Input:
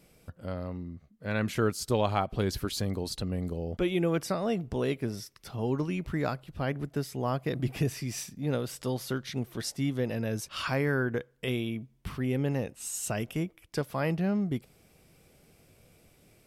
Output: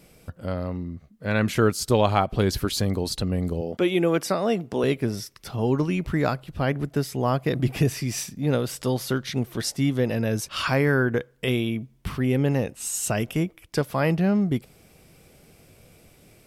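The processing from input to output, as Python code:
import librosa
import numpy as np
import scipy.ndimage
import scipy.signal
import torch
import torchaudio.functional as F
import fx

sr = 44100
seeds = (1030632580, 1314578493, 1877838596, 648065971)

y = fx.highpass(x, sr, hz=200.0, slope=12, at=(3.61, 4.84))
y = F.gain(torch.from_numpy(y), 7.0).numpy()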